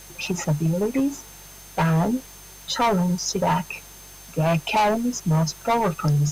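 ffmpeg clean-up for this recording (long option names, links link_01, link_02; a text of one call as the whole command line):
ffmpeg -i in.wav -af "adeclick=threshold=4,bandreject=frequency=48:width_type=h:width=4,bandreject=frequency=96:width_type=h:width=4,bandreject=frequency=144:width_type=h:width=4,bandreject=frequency=192:width_type=h:width=4,bandreject=frequency=6300:width=30,afwtdn=0.0056" out.wav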